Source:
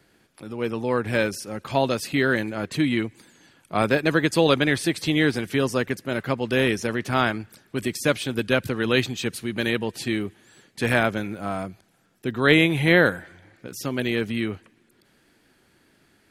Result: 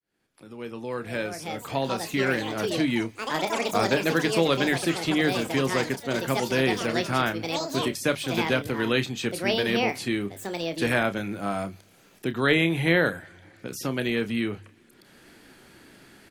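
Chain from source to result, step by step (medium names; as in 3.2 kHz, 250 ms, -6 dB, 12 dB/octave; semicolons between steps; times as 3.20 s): fade-in on the opening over 2.84 s; hum notches 50/100/150 Hz; ever faster or slower copies 657 ms, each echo +6 st, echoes 3, each echo -6 dB; doubling 30 ms -11 dB; three bands compressed up and down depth 40%; trim -3 dB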